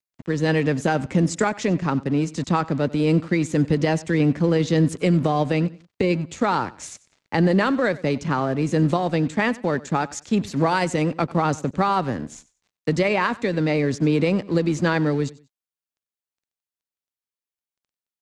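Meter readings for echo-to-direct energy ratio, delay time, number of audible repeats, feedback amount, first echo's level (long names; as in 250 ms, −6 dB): −19.5 dB, 94 ms, 2, 26%, −20.0 dB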